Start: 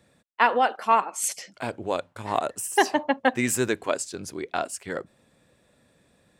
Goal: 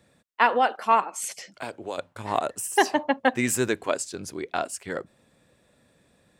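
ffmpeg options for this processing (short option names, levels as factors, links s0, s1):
-filter_complex "[0:a]asettb=1/sr,asplit=3[s0][s1][s2];[s0]atrim=end=1.044[s3];[s1]atrim=start=1.04:end=1.98,asetpts=PTS-STARTPTS,afade=t=in:d=0.004:c=qsin,afade=t=out:st=0.936:d=0.004:c=qsin,acrossover=split=290|3600[s4][s5][s6];[s4]acompressor=threshold=0.00398:ratio=4[s7];[s5]acompressor=threshold=0.0282:ratio=4[s8];[s6]acompressor=threshold=0.0282:ratio=4[s9];[s7][s8][s9]amix=inputs=3:normalize=0[s10];[s2]atrim=start=1.976[s11];[s3][s10]acrossfade=d=0.004:c1=hsin:c2=qsin[s12];[s12][s11]acrossfade=d=0.004:c1=qsin:c2=hsin"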